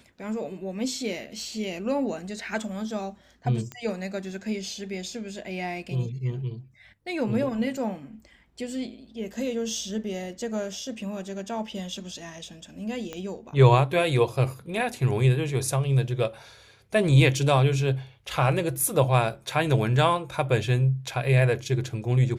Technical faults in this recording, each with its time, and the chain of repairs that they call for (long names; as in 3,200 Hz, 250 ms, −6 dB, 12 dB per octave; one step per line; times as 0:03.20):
0:03.72: click −21 dBFS
0:13.13: click −20 dBFS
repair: click removal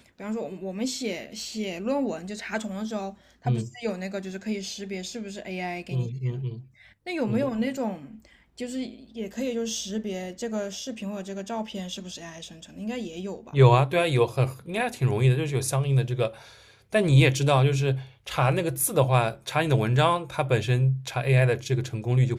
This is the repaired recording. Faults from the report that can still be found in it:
0:13.13: click